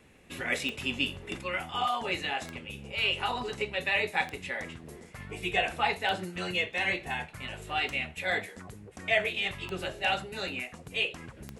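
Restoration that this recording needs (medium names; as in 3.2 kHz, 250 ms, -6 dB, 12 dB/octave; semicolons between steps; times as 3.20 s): de-click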